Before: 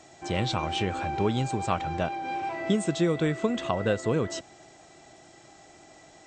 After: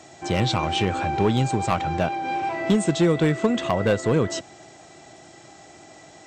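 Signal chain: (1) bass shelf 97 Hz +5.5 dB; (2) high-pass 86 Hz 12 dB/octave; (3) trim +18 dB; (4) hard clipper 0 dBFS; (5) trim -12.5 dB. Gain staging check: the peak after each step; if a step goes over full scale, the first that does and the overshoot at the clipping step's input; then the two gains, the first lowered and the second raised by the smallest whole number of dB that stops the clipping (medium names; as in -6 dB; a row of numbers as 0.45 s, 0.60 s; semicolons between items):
-10.0 dBFS, -9.0 dBFS, +9.0 dBFS, 0.0 dBFS, -12.5 dBFS; step 3, 9.0 dB; step 3 +9 dB, step 5 -3.5 dB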